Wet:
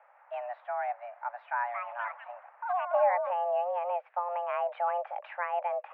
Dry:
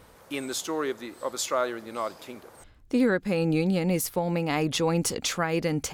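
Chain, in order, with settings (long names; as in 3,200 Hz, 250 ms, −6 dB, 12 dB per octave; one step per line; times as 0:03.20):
spectral tilt −2.5 dB per octave
0:01.35–0:03.85: delay with pitch and tempo change per echo 283 ms, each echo +7 semitones, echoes 2, each echo −6 dB
single-sideband voice off tune +350 Hz 240–2,100 Hz
level −6.5 dB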